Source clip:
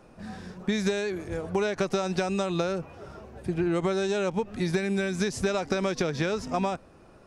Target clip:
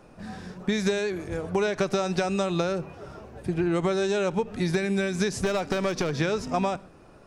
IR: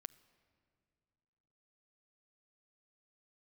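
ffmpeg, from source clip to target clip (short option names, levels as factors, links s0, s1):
-filter_complex "[0:a]asettb=1/sr,asplit=3[s0][s1][s2];[s0]atrim=end=5.444[s3];[s1]atrim=start=5.44:end=6.2,asetpts=PTS-STARTPTS,afade=t=in:d=0.004:c=qsin,afade=t=out:st=0.756:d=0.004:c=qsin,aeval=exprs='clip(val(0),-1,0.0596)':c=same[s4];[s2]atrim=start=6.196[s5];[s3][s4]acrossfade=d=0.004:c1=hsin:c2=qsin[s6];[s6][s5]acrossfade=d=0.004:c1=qsin:c2=hsin[s7];[1:a]atrim=start_sample=2205,atrim=end_sample=6615[s8];[s7][s8]afir=irnorm=-1:irlink=0,volume=2.37"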